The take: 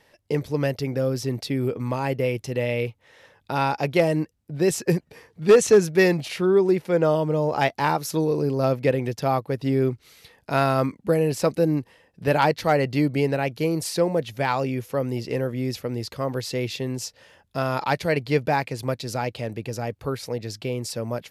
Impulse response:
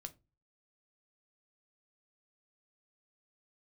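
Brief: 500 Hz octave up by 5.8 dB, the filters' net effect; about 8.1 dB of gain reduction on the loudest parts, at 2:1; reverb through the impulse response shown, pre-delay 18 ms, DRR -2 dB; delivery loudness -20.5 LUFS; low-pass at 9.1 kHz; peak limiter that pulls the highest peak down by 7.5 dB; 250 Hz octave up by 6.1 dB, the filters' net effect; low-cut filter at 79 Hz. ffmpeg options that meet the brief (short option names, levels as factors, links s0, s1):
-filter_complex "[0:a]highpass=79,lowpass=9100,equalizer=f=250:t=o:g=6.5,equalizer=f=500:t=o:g=5,acompressor=threshold=0.112:ratio=2,alimiter=limit=0.188:level=0:latency=1,asplit=2[s0][s1];[1:a]atrim=start_sample=2205,adelay=18[s2];[s1][s2]afir=irnorm=-1:irlink=0,volume=2.24[s3];[s0][s3]amix=inputs=2:normalize=0,volume=1.12"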